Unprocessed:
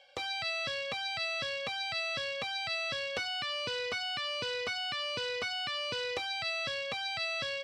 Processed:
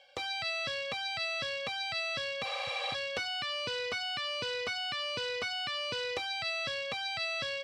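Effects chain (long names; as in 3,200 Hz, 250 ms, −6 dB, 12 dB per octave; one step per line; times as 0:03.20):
healed spectral selection 0:02.48–0:02.92, 480–9,500 Hz before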